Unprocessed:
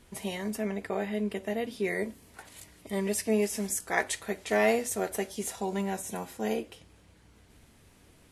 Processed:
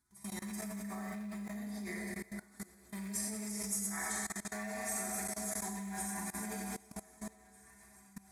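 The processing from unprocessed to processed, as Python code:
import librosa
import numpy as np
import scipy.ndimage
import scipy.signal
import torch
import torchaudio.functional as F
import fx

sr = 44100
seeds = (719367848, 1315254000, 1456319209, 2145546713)

p1 = fx.rattle_buzz(x, sr, strikes_db=-32.0, level_db=-26.0)
p2 = scipy.signal.sosfilt(scipy.signal.butter(2, 41.0, 'highpass', fs=sr, output='sos'), p1)
p3 = fx.fixed_phaser(p2, sr, hz=1200.0, stages=4)
p4 = fx.stiff_resonator(p3, sr, f0_hz=65.0, decay_s=0.24, stiffness=0.008)
p5 = p4 + fx.echo_alternate(p4, sr, ms=768, hz=1000.0, feedback_pct=66, wet_db=-10, dry=0)
p6 = fx.quant_float(p5, sr, bits=4)
p7 = fx.rev_schroeder(p6, sr, rt60_s=2.2, comb_ms=30, drr_db=-2.5)
p8 = fx.rider(p7, sr, range_db=4, speed_s=2.0)
p9 = fx.high_shelf(p8, sr, hz=9800.0, db=-6.0)
p10 = fx.level_steps(p9, sr, step_db=21)
y = fx.high_shelf(p10, sr, hz=2300.0, db=9.5)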